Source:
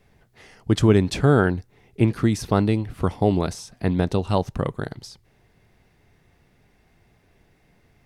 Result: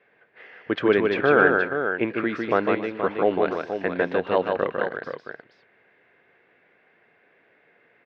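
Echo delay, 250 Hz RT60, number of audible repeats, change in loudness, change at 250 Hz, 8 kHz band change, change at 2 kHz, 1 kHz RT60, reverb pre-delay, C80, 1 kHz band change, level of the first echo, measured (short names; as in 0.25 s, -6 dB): 0.152 s, none, 3, -1.0 dB, -5.0 dB, under -25 dB, +9.0 dB, none, none, none, +3.0 dB, -4.0 dB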